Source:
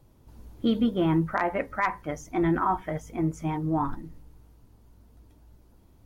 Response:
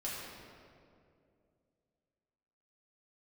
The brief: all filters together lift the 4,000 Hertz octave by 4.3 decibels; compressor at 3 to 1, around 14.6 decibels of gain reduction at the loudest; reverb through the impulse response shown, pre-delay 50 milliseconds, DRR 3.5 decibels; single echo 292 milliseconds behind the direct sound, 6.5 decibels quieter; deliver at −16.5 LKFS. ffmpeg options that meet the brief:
-filter_complex "[0:a]equalizer=frequency=4000:width_type=o:gain=6,acompressor=threshold=-40dB:ratio=3,aecho=1:1:292:0.473,asplit=2[link_01][link_02];[1:a]atrim=start_sample=2205,adelay=50[link_03];[link_02][link_03]afir=irnorm=-1:irlink=0,volume=-6dB[link_04];[link_01][link_04]amix=inputs=2:normalize=0,volume=21.5dB"

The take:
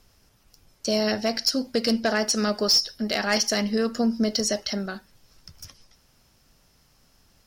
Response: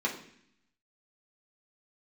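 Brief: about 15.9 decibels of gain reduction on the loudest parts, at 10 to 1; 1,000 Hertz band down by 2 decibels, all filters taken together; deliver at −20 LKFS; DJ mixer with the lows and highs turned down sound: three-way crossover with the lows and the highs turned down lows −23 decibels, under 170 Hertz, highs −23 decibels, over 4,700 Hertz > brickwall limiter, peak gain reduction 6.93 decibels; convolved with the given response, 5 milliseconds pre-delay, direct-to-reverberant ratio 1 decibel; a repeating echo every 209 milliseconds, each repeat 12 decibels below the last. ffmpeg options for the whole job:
-filter_complex "[0:a]equalizer=frequency=1000:width_type=o:gain=-3,acompressor=threshold=-35dB:ratio=10,aecho=1:1:209|418|627:0.251|0.0628|0.0157,asplit=2[link_01][link_02];[1:a]atrim=start_sample=2205,adelay=5[link_03];[link_02][link_03]afir=irnorm=-1:irlink=0,volume=-8.5dB[link_04];[link_01][link_04]amix=inputs=2:normalize=0,acrossover=split=170 4700:gain=0.0708 1 0.0708[link_05][link_06][link_07];[link_05][link_06][link_07]amix=inputs=3:normalize=0,volume=21.5dB,alimiter=limit=-10dB:level=0:latency=1"

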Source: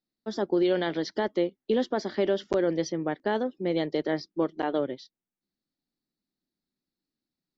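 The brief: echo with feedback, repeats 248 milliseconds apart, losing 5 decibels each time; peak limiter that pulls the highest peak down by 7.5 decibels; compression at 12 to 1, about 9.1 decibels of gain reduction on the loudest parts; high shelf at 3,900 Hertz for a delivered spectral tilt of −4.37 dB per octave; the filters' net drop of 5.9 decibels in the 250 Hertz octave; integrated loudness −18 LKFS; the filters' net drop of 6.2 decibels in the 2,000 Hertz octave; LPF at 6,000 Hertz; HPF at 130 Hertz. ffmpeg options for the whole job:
ffmpeg -i in.wav -af "highpass=130,lowpass=6000,equalizer=frequency=250:width_type=o:gain=-9,equalizer=frequency=2000:width_type=o:gain=-6.5,highshelf=frequency=3900:gain=-5.5,acompressor=threshold=-33dB:ratio=12,alimiter=level_in=7dB:limit=-24dB:level=0:latency=1,volume=-7dB,aecho=1:1:248|496|744|992|1240|1488|1736:0.562|0.315|0.176|0.0988|0.0553|0.031|0.0173,volume=23dB" out.wav

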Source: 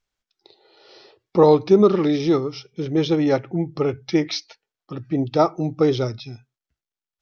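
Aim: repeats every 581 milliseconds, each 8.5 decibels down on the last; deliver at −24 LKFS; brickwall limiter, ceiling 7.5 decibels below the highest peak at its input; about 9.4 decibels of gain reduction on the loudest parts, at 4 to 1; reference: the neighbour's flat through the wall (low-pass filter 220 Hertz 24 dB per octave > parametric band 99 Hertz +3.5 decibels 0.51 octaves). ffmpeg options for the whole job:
ffmpeg -i in.wav -af "acompressor=threshold=-20dB:ratio=4,alimiter=limit=-17.5dB:level=0:latency=1,lowpass=frequency=220:width=0.5412,lowpass=frequency=220:width=1.3066,equalizer=frequency=99:width_type=o:width=0.51:gain=3.5,aecho=1:1:581|1162|1743|2324:0.376|0.143|0.0543|0.0206,volume=10.5dB" out.wav

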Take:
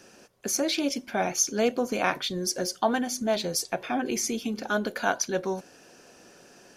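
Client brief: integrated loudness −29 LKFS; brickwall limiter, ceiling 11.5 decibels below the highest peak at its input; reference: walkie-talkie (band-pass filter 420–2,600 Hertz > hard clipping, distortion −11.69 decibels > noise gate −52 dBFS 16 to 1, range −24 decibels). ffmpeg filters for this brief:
ffmpeg -i in.wav -af "alimiter=limit=-21dB:level=0:latency=1,highpass=420,lowpass=2600,asoftclip=type=hard:threshold=-30dB,agate=range=-24dB:threshold=-52dB:ratio=16,volume=8dB" out.wav

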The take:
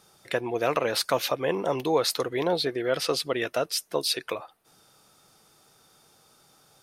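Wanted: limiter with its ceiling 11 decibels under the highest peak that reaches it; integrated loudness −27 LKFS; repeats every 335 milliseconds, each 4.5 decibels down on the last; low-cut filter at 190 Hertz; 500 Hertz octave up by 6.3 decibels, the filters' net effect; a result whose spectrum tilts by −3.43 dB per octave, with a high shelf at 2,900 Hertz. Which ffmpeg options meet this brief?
ffmpeg -i in.wav -af "highpass=190,equalizer=frequency=500:width_type=o:gain=7.5,highshelf=frequency=2900:gain=-7,alimiter=limit=-17.5dB:level=0:latency=1,aecho=1:1:335|670|1005|1340|1675|2010|2345|2680|3015:0.596|0.357|0.214|0.129|0.0772|0.0463|0.0278|0.0167|0.01,volume=-0.5dB" out.wav

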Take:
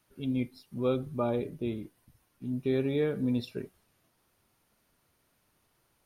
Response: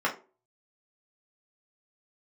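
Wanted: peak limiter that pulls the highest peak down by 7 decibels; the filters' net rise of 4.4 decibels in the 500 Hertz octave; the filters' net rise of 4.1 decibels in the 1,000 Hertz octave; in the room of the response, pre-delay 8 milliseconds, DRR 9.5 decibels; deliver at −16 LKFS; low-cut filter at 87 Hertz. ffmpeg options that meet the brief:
-filter_complex "[0:a]highpass=87,equalizer=frequency=500:width_type=o:gain=4.5,equalizer=frequency=1000:width_type=o:gain=4,alimiter=limit=-20.5dB:level=0:latency=1,asplit=2[link_01][link_02];[1:a]atrim=start_sample=2205,adelay=8[link_03];[link_02][link_03]afir=irnorm=-1:irlink=0,volume=-21dB[link_04];[link_01][link_04]amix=inputs=2:normalize=0,volume=16dB"

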